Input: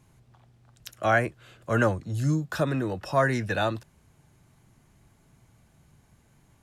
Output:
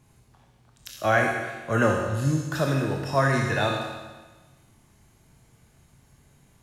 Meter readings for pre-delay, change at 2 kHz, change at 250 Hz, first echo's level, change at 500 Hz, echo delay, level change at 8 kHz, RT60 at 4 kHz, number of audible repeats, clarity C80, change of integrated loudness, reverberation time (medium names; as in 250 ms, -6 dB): 22 ms, +2.5 dB, +1.5 dB, no echo, +2.0 dB, no echo, +5.0 dB, 1.3 s, no echo, 4.0 dB, +2.0 dB, 1.3 s